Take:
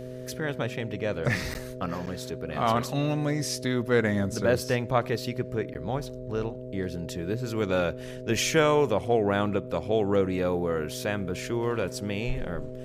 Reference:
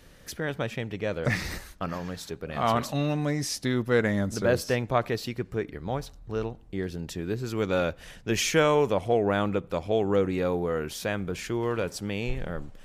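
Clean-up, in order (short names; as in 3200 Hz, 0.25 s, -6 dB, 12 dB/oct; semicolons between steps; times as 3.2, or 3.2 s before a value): de-hum 126.6 Hz, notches 5; notch 430 Hz, Q 30; interpolate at 1.54/2.06/5.74, 9.5 ms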